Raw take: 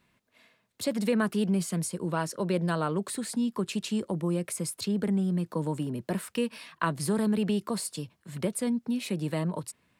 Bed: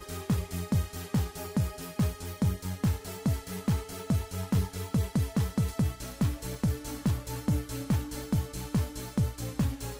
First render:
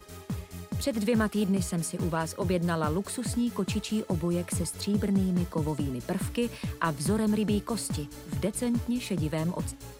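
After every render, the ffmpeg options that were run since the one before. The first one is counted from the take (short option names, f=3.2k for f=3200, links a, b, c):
-filter_complex "[1:a]volume=-6.5dB[a];[0:a][a]amix=inputs=2:normalize=0"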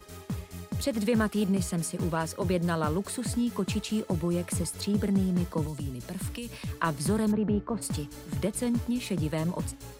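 -filter_complex "[0:a]asettb=1/sr,asplit=3[a][b][c];[a]atrim=end=5.664[d];[b]atrim=start=5.66:end=6.73,asetpts=PTS-STARTPTS,afade=t=in:d=0.004:c=qsin,afade=t=out:st=1.066:d=0.004:c=qsin,acrossover=split=160|3000[e][f][g];[f]acompressor=threshold=-39dB:ratio=6:attack=3.2:release=140:knee=2.83:detection=peak[h];[e][h][g]amix=inputs=3:normalize=0[i];[c]atrim=start=6.726[j];[d][i]acrossfade=d=0.004:c1=hsin:c2=qsin[k];[k][j]acrossfade=d=0.004:c1=qsin:c2=hsin,asplit=3[l][m][n];[l]afade=t=out:st=7.31:d=0.02[o];[m]lowpass=1.4k,afade=t=in:st=7.31:d=0.02,afade=t=out:st=7.81:d=0.02[p];[n]afade=t=in:st=7.81:d=0.02[q];[o][p][q]amix=inputs=3:normalize=0"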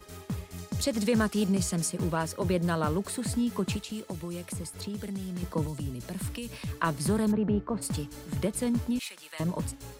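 -filter_complex "[0:a]asettb=1/sr,asplit=3[a][b][c];[a]atrim=end=0.584[d];[b]atrim=start=0.58:end=1.9,asetpts=PTS-STARTPTS,afade=t=in:d=0.004:c=qsin,afade=t=out:st=1.316:d=0.004:c=qsin,equalizer=f=6.1k:w=1.1:g=6.5[e];[c]atrim=start=1.896[f];[d][e]acrossfade=d=0.004:c1=hsin:c2=qsin[g];[g][f]acrossfade=d=0.004:c1=qsin:c2=hsin,asettb=1/sr,asplit=3[h][i][j];[h]atrim=end=3.764[k];[i]atrim=start=3.76:end=5.43,asetpts=PTS-STARTPTS,afade=t=in:d=0.004:c=qsin,afade=t=out:st=1.666:d=0.004:c=qsin,acrossover=split=1200|2500[l][m][n];[l]acompressor=threshold=-35dB:ratio=4[o];[m]acompressor=threshold=-56dB:ratio=4[p];[n]acompressor=threshold=-40dB:ratio=4[q];[o][p][q]amix=inputs=3:normalize=0[r];[j]atrim=start=5.426[s];[k][r]acrossfade=d=0.004:c1=hsin:c2=qsin[t];[t][s]acrossfade=d=0.004:c1=qsin:c2=hsin,asettb=1/sr,asplit=3[u][v][w];[u]atrim=end=8.994[x];[v]atrim=start=8.99:end=9.4,asetpts=PTS-STARTPTS,afade=t=in:d=0.004:c=qsin,afade=t=out:st=0.406:d=0.004:c=qsin,highpass=1.5k[y];[w]atrim=start=9.396[z];[x][y]acrossfade=d=0.004:c1=hsin:c2=qsin[aa];[aa][z]acrossfade=d=0.004:c1=qsin:c2=hsin"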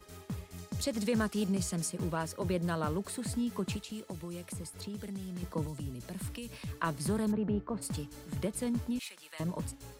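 -af "volume=-5dB"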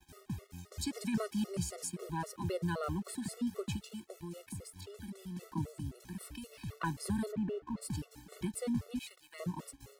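-af "aeval=exprs='sgn(val(0))*max(abs(val(0))-0.00141,0)':c=same,afftfilt=real='re*gt(sin(2*PI*3.8*pts/sr)*(1-2*mod(floor(b*sr/1024/370),2)),0)':imag='im*gt(sin(2*PI*3.8*pts/sr)*(1-2*mod(floor(b*sr/1024/370),2)),0)':win_size=1024:overlap=0.75"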